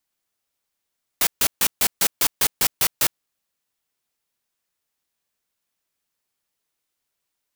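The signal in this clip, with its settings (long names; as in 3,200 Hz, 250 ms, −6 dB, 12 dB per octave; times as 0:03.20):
noise bursts white, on 0.06 s, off 0.14 s, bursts 10, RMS −18 dBFS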